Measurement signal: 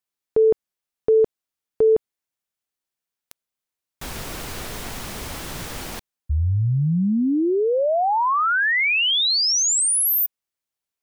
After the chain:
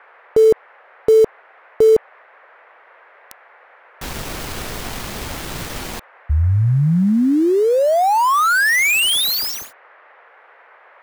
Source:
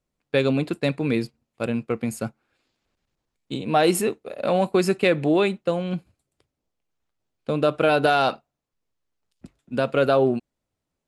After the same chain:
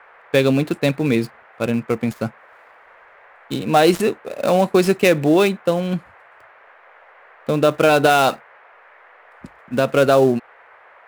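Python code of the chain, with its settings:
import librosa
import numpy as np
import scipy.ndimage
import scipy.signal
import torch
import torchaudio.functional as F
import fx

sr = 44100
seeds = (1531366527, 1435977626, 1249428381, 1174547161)

y = fx.dead_time(x, sr, dead_ms=0.06)
y = fx.dmg_noise_band(y, sr, seeds[0], low_hz=470.0, high_hz=2000.0, level_db=-53.0)
y = y * 10.0 ** (5.0 / 20.0)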